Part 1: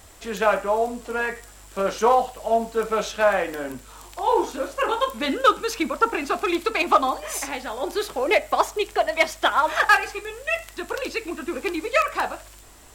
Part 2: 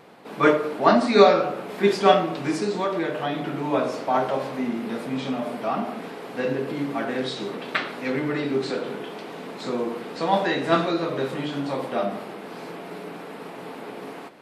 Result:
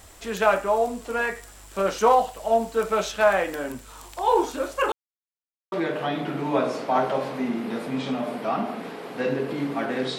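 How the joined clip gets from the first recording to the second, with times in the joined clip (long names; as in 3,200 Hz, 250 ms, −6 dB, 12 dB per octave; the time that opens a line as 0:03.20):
part 1
0:04.92–0:05.72: silence
0:05.72: continue with part 2 from 0:02.91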